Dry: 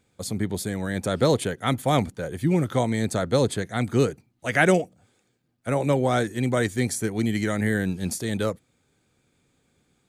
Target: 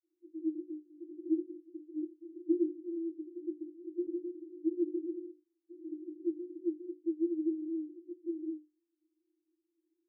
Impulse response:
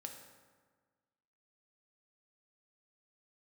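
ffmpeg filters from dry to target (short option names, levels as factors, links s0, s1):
-filter_complex "[0:a]asuperpass=centerf=330:order=20:qfactor=6,asettb=1/sr,asplit=3[s0][s1][s2];[s0]atrim=end=3.914[s3];[s1]atrim=start=3.91:end=6.31,asetpts=PTS-STARTPTS,afade=t=in:d=0.004:c=qsin,afade=t=out:st=2.396:d=0.004:c=qsin,aecho=1:1:160|280|370|437.5|488.1:0.631|0.398|0.251|0.158|0.1,atrim=end_sample=105840[s4];[s2]atrim=start=6.306[s5];[s3][s4]acrossfade=d=0.004:c1=hsin:c2=qsin[s6];[s6][s5]acrossfade=d=0.004:c1=qsin:c2=hsin"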